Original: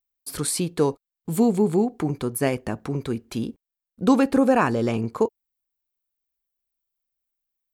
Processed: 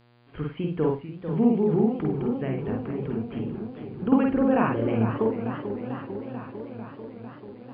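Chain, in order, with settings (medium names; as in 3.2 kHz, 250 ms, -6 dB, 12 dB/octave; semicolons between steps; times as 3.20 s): brick-wall FIR low-pass 3.3 kHz; bass shelf 230 Hz +8.5 dB; hum notches 60/120/180 Hz; reverberation, pre-delay 45 ms, DRR 1 dB; mains buzz 120 Hz, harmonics 40, -51 dBFS -5 dB/octave; 2.11–4.12 s: compression 3:1, threshold -20 dBFS, peak gain reduction 9 dB; modulated delay 445 ms, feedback 73%, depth 155 cents, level -9.5 dB; trim -8 dB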